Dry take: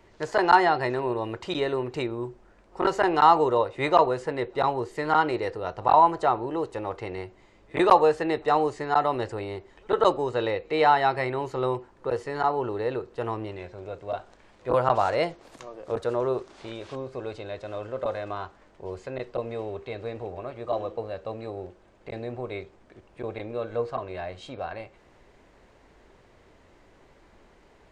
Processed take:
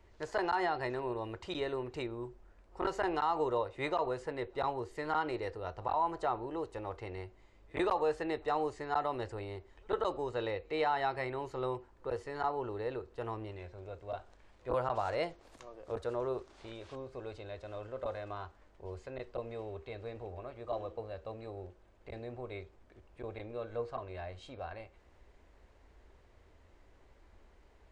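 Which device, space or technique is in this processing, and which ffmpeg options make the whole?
car stereo with a boomy subwoofer: -af "lowshelf=f=100:t=q:w=1.5:g=8,alimiter=limit=0.224:level=0:latency=1:release=77,volume=0.355"

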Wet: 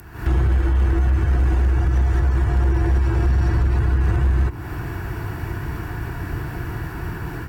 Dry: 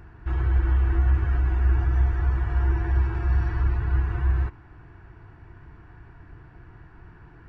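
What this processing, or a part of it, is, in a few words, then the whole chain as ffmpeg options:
FM broadcast chain: -filter_complex "[0:a]highpass=f=58:p=1,dynaudnorm=f=120:g=3:m=6.31,acrossover=split=84|700[s0][s1][s2];[s0]acompressor=threshold=0.0708:ratio=4[s3];[s1]acompressor=threshold=0.0631:ratio=4[s4];[s2]acompressor=threshold=0.00708:ratio=4[s5];[s3][s4][s5]amix=inputs=3:normalize=0,aemphasis=mode=production:type=50fm,alimiter=limit=0.168:level=0:latency=1:release=134,asoftclip=type=hard:threshold=0.119,lowpass=f=15000:w=0.5412,lowpass=f=15000:w=1.3066,aemphasis=mode=production:type=50fm,volume=2"

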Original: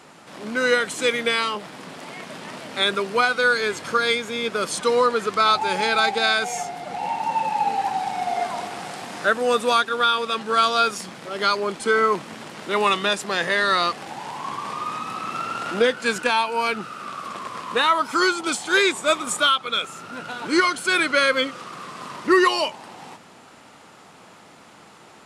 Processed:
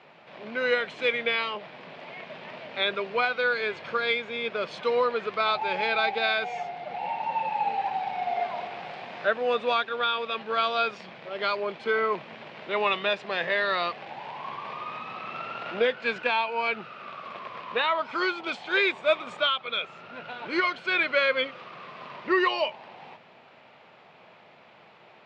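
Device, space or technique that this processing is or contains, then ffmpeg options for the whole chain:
guitar cabinet: -af "highpass=110,equalizer=f=200:t=q:w=4:g=-4,equalizer=f=290:t=q:w=4:g=-9,equalizer=f=620:t=q:w=4:g=5,equalizer=f=1300:t=q:w=4:g=-4,equalizer=f=2400:t=q:w=4:g=5,lowpass=f=3800:w=0.5412,lowpass=f=3800:w=1.3066,volume=0.531"

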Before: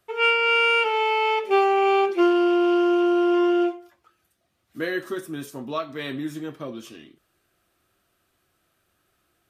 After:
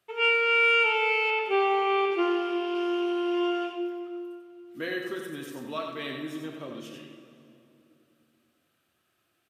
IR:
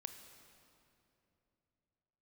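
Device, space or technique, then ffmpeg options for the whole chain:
PA in a hall: -filter_complex "[0:a]highpass=100,equalizer=f=2800:t=o:w=0.87:g=5,aecho=1:1:91:0.531[s0];[1:a]atrim=start_sample=2205[s1];[s0][s1]afir=irnorm=-1:irlink=0,asettb=1/sr,asplit=3[s2][s3][s4];[s2]atrim=end=1.304[s5];[s3]atrim=start=1.3:end=2.75,asetpts=PTS-STARTPTS,afade=t=in:d=0.004:c=qsin,afade=t=out:st=1.446:d=0.004:c=qsin,acrossover=split=4000[s6][s7];[s7]acompressor=threshold=0.00251:ratio=4:attack=1:release=60[s8];[s6][s8]amix=inputs=2:normalize=0[s9];[s4]atrim=start=2.746[s10];[s5][s9]acrossfade=d=0.004:c1=hsin:c2=qsin[s11];[s11][s10]acrossfade=d=0.004:c1=qsin:c2=hsin,volume=0.794"

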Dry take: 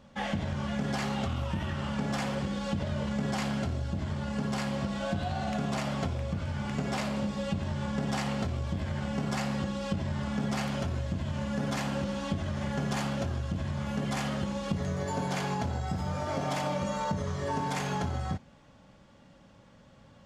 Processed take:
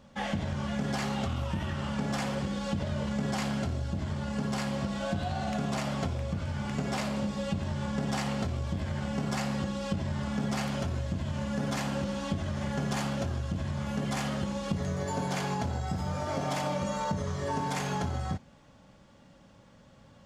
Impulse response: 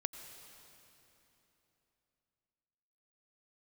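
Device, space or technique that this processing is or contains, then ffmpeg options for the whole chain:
exciter from parts: -filter_complex "[0:a]asplit=2[s0][s1];[s1]highpass=3700,asoftclip=type=tanh:threshold=0.0119,volume=0.316[s2];[s0][s2]amix=inputs=2:normalize=0"

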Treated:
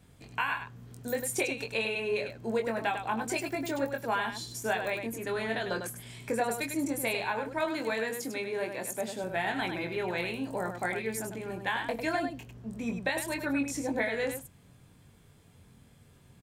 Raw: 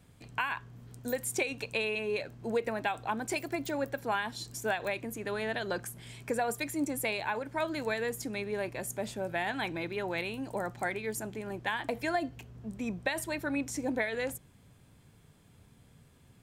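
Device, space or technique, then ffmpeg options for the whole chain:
slapback doubling: -filter_complex "[0:a]asettb=1/sr,asplit=3[s0][s1][s2];[s0]atrim=end=7.594[s3];[s1]atrim=start=7.59:end=9.24,asetpts=PTS-STARTPTS,afade=t=in:d=0.004:c=qsin,afade=t=out:st=1.646:d=0.004:c=qsin,highpass=190[s4];[s2]atrim=start=9.236[s5];[s3][s4]acrossfade=d=0.004:c1=hsin:c2=qsin[s6];[s6][s5]acrossfade=d=0.004:c1=qsin:c2=hsin,asplit=3[s7][s8][s9];[s8]adelay=22,volume=0.562[s10];[s9]adelay=100,volume=0.447[s11];[s7][s10][s11]amix=inputs=3:normalize=0"

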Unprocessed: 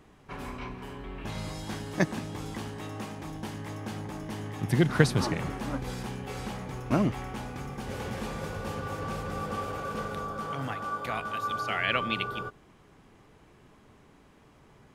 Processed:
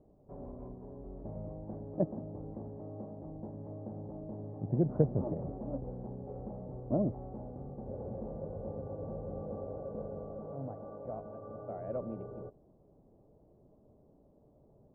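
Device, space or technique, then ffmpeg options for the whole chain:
under water: -af "lowpass=f=670:w=0.5412,lowpass=f=670:w=1.3066,equalizer=f=600:t=o:w=0.46:g=8,volume=0.501"

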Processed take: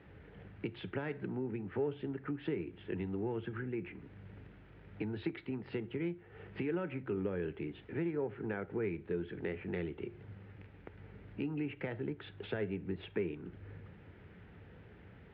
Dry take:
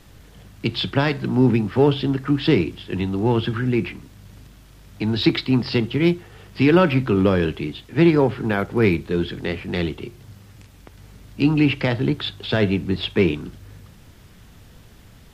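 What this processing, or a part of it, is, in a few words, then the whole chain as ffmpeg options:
bass amplifier: -af "acompressor=threshold=0.0251:ratio=4,highpass=85,equalizer=f=130:t=q:w=4:g=-5,equalizer=f=240:t=q:w=4:g=-5,equalizer=f=430:t=q:w=4:g=4,equalizer=f=660:t=q:w=4:g=-4,equalizer=f=1100:t=q:w=4:g=-8,lowpass=f=2300:w=0.5412,lowpass=f=2300:w=1.3066,volume=0.631"

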